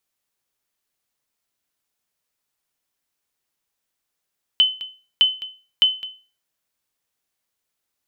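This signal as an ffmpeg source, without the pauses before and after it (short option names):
-f lavfi -i "aevalsrc='0.422*(sin(2*PI*3040*mod(t,0.61))*exp(-6.91*mod(t,0.61)/0.35)+0.158*sin(2*PI*3040*max(mod(t,0.61)-0.21,0))*exp(-6.91*max(mod(t,0.61)-0.21,0)/0.35))':d=1.83:s=44100"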